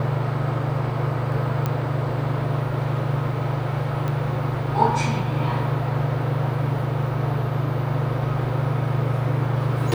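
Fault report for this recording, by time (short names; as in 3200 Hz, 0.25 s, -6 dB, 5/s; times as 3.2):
1.66 pop -11 dBFS
4.08 pop -16 dBFS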